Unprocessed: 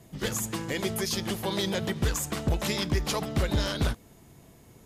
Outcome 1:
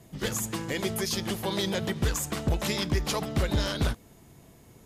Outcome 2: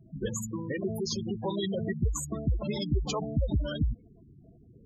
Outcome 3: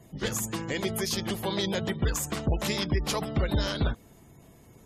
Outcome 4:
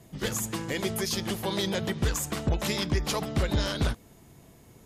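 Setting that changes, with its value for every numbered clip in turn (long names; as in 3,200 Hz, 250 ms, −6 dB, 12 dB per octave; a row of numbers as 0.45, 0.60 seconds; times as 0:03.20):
gate on every frequency bin, under each frame's peak: −60, −10, −30, −45 decibels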